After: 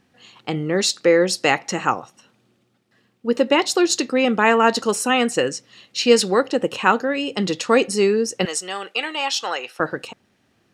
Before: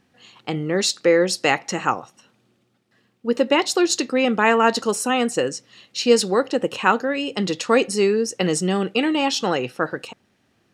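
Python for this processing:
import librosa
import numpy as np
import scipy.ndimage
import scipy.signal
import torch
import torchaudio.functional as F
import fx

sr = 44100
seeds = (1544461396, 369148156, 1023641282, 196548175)

y = fx.dynamic_eq(x, sr, hz=2200.0, q=0.96, threshold_db=-36.0, ratio=4.0, max_db=4, at=(4.88, 6.41))
y = fx.highpass(y, sr, hz=790.0, slope=12, at=(8.45, 9.8))
y = y * 10.0 ** (1.0 / 20.0)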